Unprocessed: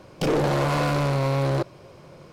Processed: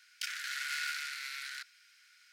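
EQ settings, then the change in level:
Chebyshev high-pass with heavy ripple 1,400 Hz, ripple 3 dB
high-shelf EQ 11,000 Hz +4.5 dB
−2.5 dB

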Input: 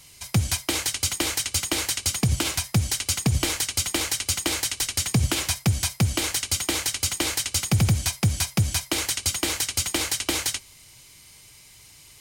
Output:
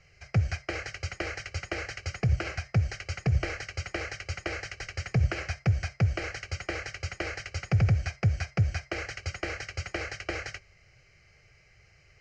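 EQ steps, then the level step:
low-pass filter 5,700 Hz 24 dB per octave
high-frequency loss of the air 150 metres
phaser with its sweep stopped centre 970 Hz, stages 6
0.0 dB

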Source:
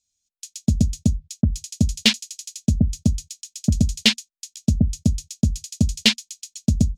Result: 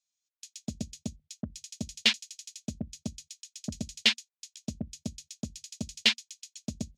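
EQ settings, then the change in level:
high-pass filter 1,300 Hz 6 dB per octave
low-pass filter 2,100 Hz 6 dB per octave
0.0 dB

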